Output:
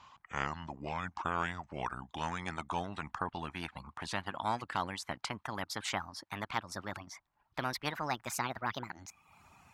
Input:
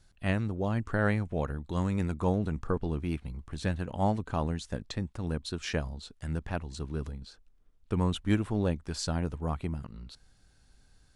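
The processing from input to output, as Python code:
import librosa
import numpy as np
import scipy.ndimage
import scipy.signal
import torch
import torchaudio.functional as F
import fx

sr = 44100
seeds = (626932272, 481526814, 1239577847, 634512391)

y = fx.speed_glide(x, sr, from_pct=69, to_pct=160)
y = scipy.signal.sosfilt(scipy.signal.butter(2, 130.0, 'highpass', fs=sr, output='sos'), y)
y = fx.dereverb_blind(y, sr, rt60_s=0.67)
y = fx.lowpass(y, sr, hz=1100.0, slope=6)
y = fx.low_shelf_res(y, sr, hz=640.0, db=-11.0, q=3.0)
y = fx.spectral_comp(y, sr, ratio=2.0)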